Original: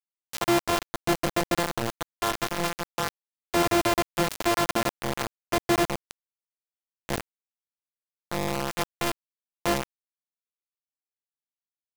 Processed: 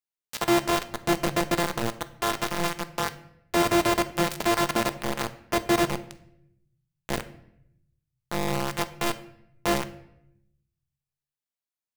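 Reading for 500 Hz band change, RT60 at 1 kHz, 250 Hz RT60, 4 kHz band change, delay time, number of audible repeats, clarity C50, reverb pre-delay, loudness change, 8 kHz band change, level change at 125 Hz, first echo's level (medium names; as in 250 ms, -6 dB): +1.0 dB, 0.70 s, 1.1 s, +0.5 dB, no echo, no echo, 15.0 dB, 5 ms, +1.0 dB, 0.0 dB, +1.0 dB, no echo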